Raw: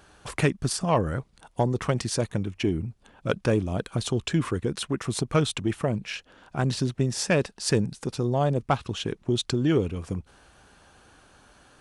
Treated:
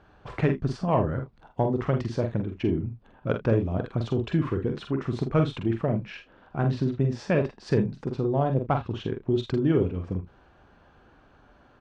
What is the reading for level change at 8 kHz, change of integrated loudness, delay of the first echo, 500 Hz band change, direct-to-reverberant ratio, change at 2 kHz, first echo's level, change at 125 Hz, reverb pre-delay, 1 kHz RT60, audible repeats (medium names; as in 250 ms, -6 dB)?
under -20 dB, 0.0 dB, 44 ms, +0.5 dB, no reverb, -4.5 dB, -6.5 dB, +0.5 dB, no reverb, no reverb, 2